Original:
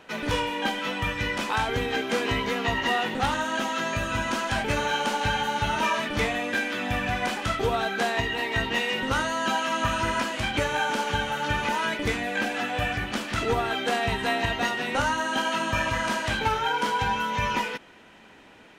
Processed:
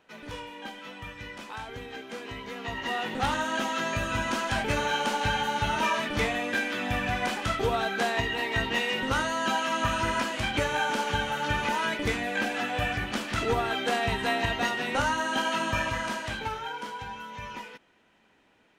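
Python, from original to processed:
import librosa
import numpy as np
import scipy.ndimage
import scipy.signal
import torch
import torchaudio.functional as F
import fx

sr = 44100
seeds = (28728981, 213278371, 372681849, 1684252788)

y = fx.gain(x, sr, db=fx.line((2.36, -13.0), (3.3, -1.5), (15.68, -1.5), (17.07, -13.0)))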